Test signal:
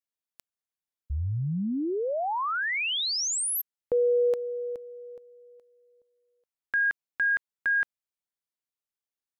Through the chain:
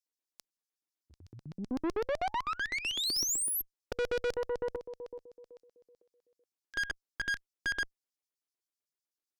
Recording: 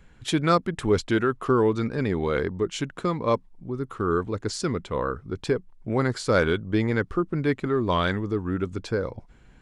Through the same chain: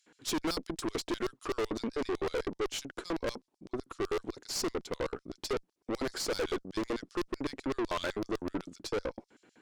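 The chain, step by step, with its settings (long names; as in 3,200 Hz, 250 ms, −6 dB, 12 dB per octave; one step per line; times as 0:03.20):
dynamic equaliser 660 Hz, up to +5 dB, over −37 dBFS, Q 1.5
auto-filter high-pass square 7.9 Hz 320–5,100 Hz
tube saturation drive 29 dB, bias 0.6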